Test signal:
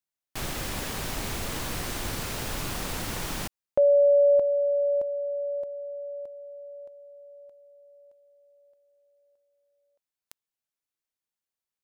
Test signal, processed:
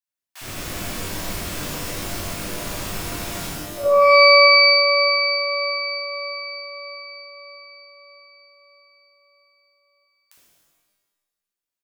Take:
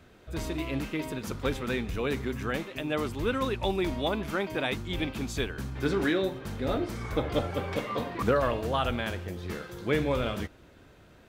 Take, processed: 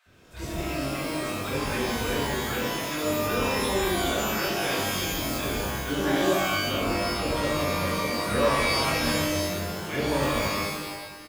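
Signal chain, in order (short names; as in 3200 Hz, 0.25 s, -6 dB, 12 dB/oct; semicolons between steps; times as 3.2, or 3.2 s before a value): bands offset in time highs, lows 60 ms, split 820 Hz; shimmer reverb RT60 1.2 s, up +12 st, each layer -2 dB, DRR -6.5 dB; gain -6 dB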